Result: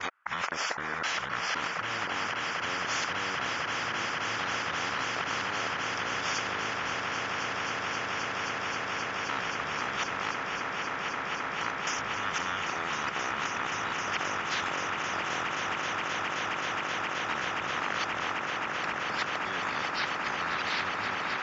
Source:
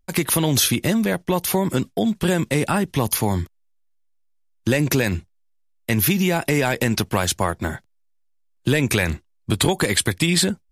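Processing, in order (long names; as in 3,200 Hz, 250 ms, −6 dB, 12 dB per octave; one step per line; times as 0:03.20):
reversed piece by piece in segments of 129 ms
downward compressor, threshold −21 dBFS, peak gain reduction 8 dB
brickwall limiter −19.5 dBFS, peak gain reduction 10.5 dB
high-pass with resonance 2,700 Hz, resonance Q 7
high-frequency loss of the air 290 metres
echo that builds up and dies away 132 ms, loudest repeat 8, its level −10 dB
wrong playback speed 15 ips tape played at 7.5 ips
every bin compressed towards the loudest bin 4 to 1
level −1.5 dB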